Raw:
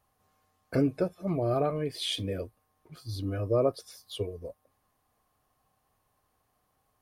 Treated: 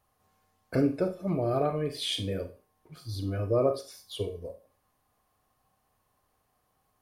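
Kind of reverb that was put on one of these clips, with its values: Schroeder reverb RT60 0.34 s, combs from 31 ms, DRR 8 dB

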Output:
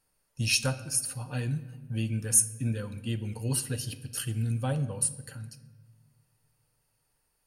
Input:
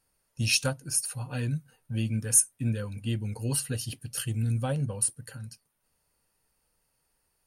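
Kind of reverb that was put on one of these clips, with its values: simulated room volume 910 m³, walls mixed, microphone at 0.42 m; trim -1 dB

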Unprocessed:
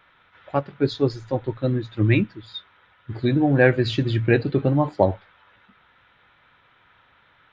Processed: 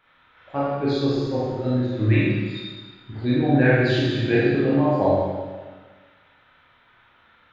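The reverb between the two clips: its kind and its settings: Schroeder reverb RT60 1.4 s, combs from 25 ms, DRR -7.5 dB; trim -7 dB

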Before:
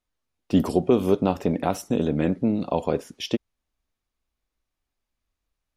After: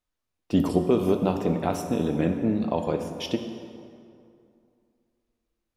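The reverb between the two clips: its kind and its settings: plate-style reverb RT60 2.5 s, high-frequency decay 0.6×, DRR 5.5 dB; trim -2.5 dB

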